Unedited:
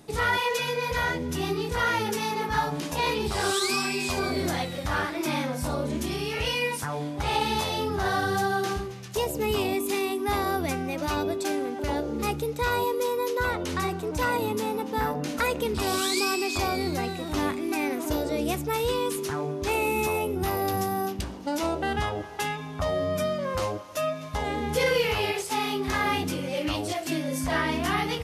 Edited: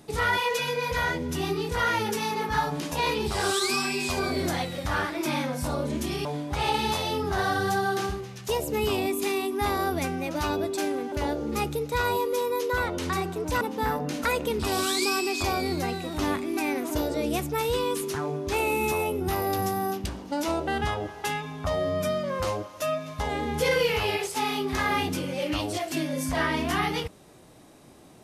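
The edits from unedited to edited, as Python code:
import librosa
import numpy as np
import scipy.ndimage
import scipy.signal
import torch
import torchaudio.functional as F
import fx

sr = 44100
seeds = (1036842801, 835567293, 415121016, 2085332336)

y = fx.edit(x, sr, fx.cut(start_s=6.25, length_s=0.67),
    fx.cut(start_s=14.28, length_s=0.48), tone=tone)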